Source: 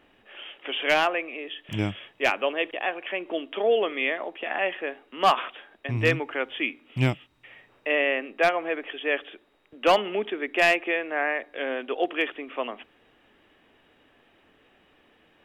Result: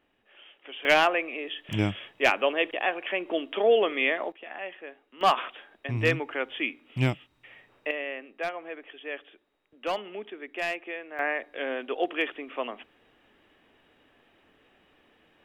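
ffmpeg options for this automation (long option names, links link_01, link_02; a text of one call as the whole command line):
ffmpeg -i in.wav -af "asetnsamples=nb_out_samples=441:pad=0,asendcmd='0.85 volume volume 1dB;4.32 volume volume -11dB;5.21 volume volume -2dB;7.91 volume volume -10.5dB;11.19 volume volume -2dB',volume=-11dB" out.wav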